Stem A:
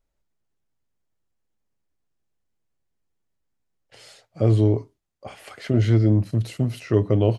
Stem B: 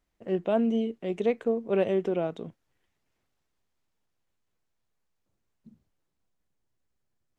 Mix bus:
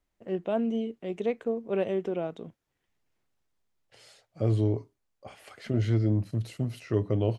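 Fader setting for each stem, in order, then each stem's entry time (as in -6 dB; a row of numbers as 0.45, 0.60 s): -7.5, -3.0 dB; 0.00, 0.00 s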